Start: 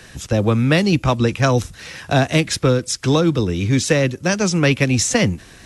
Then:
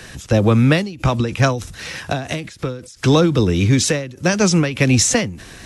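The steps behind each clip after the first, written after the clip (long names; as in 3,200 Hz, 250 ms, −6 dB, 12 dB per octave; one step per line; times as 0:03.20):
in parallel at −0.5 dB: brickwall limiter −12 dBFS, peak gain reduction 8.5 dB
on the sum: every ending faded ahead of time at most 100 dB per second
level −1 dB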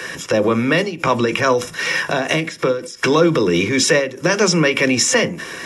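brickwall limiter −13.5 dBFS, peak gain reduction 11 dB
convolution reverb RT60 0.30 s, pre-delay 3 ms, DRR 10 dB
level +5 dB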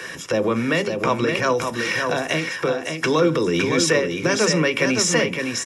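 single-tap delay 563 ms −5.5 dB
level −4.5 dB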